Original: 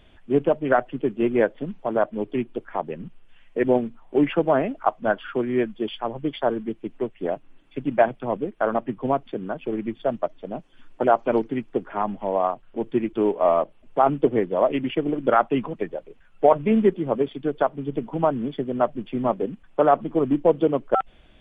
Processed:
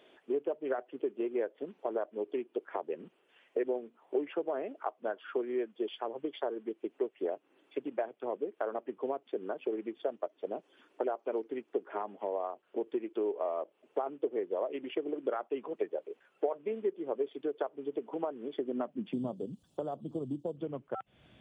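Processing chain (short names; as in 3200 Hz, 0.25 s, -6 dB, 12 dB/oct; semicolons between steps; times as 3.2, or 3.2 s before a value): 19.13–20.57 EQ curve 530 Hz 0 dB, 2200 Hz -18 dB, 4100 Hz +14 dB; compressor 6:1, threshold -31 dBFS, peak gain reduction 19 dB; high-pass sweep 400 Hz -> 110 Hz, 18.51–19.52; gain -4.5 dB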